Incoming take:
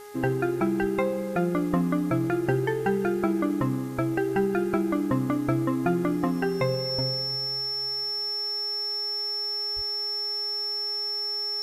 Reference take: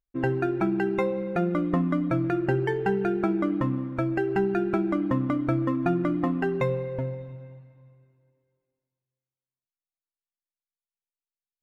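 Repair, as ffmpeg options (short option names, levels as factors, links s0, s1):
-filter_complex "[0:a]bandreject=f=414:t=h:w=4,bandreject=f=828:t=h:w=4,bandreject=f=1242:t=h:w=4,bandreject=f=1656:t=h:w=4,bandreject=f=2070:t=h:w=4,bandreject=f=5400:w=30,asplit=3[s0][s1][s2];[s0]afade=t=out:st=0.8:d=0.02[s3];[s1]highpass=f=140:w=0.5412,highpass=f=140:w=1.3066,afade=t=in:st=0.8:d=0.02,afade=t=out:st=0.92:d=0.02[s4];[s2]afade=t=in:st=0.92:d=0.02[s5];[s3][s4][s5]amix=inputs=3:normalize=0,asplit=3[s6][s7][s8];[s6]afade=t=out:st=9.75:d=0.02[s9];[s7]highpass=f=140:w=0.5412,highpass=f=140:w=1.3066,afade=t=in:st=9.75:d=0.02,afade=t=out:st=9.87:d=0.02[s10];[s8]afade=t=in:st=9.87:d=0.02[s11];[s9][s10][s11]amix=inputs=3:normalize=0,agate=range=0.0891:threshold=0.0794"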